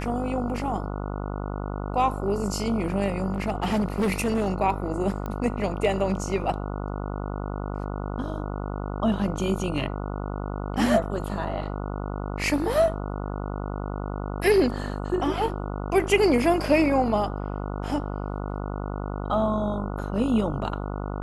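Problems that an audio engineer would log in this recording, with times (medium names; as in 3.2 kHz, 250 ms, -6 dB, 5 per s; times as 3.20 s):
buzz 50 Hz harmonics 29 -31 dBFS
3.34–4.48 s: clipped -19.5 dBFS
5.26 s: pop -20 dBFS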